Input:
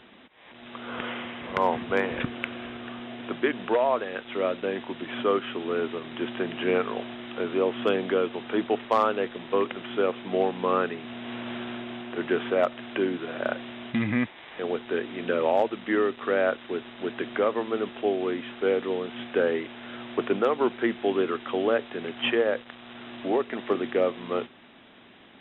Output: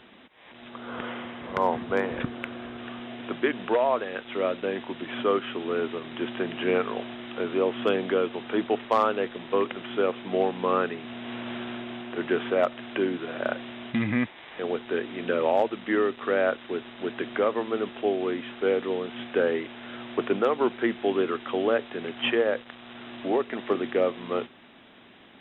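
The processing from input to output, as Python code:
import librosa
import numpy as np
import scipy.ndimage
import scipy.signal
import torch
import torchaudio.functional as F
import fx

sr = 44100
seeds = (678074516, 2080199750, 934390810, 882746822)

y = fx.peak_eq(x, sr, hz=2600.0, db=-5.5, octaves=1.1, at=(0.69, 2.78))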